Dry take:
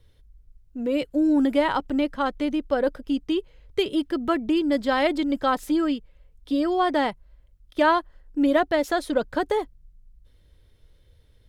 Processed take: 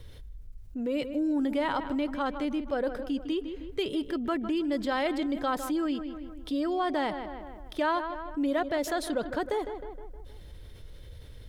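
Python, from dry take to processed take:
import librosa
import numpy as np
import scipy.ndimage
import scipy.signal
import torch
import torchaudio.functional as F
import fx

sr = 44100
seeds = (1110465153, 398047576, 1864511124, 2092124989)

y = fx.echo_filtered(x, sr, ms=156, feedback_pct=42, hz=3000.0, wet_db=-15.5)
y = fx.env_flatten(y, sr, amount_pct=50)
y = y * 10.0 ** (-9.0 / 20.0)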